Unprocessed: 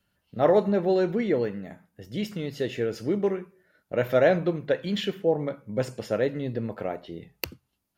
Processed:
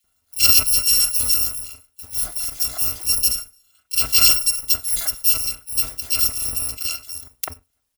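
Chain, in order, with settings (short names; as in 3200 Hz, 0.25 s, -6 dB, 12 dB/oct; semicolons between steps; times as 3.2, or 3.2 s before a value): FFT order left unsorted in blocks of 256 samples; bands offset in time highs, lows 40 ms, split 2200 Hz; gain +6 dB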